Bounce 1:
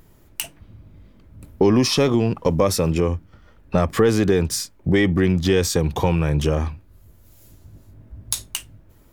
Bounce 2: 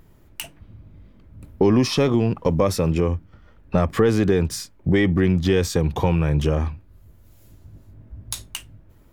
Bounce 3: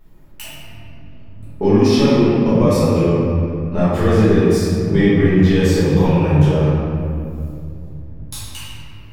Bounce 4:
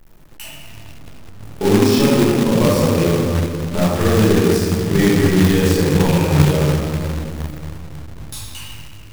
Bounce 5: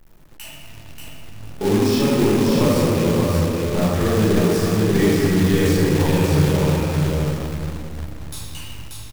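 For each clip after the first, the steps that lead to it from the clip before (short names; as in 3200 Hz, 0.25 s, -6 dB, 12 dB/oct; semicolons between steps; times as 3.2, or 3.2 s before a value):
tone controls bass +2 dB, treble -5 dB; gain -1.5 dB
reverb RT60 2.6 s, pre-delay 5 ms, DRR -12 dB; gain -8 dB
companded quantiser 4-bit; gain -1 dB
soft clip -4.5 dBFS, distortion -21 dB; echo 0.585 s -3.5 dB; gain -3 dB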